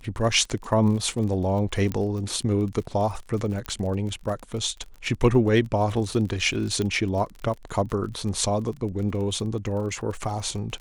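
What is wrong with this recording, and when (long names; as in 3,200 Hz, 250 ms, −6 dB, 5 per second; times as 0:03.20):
surface crackle 40 per second −33 dBFS
0:01.92: click −15 dBFS
0:03.66: click −17 dBFS
0:06.82: click −15 dBFS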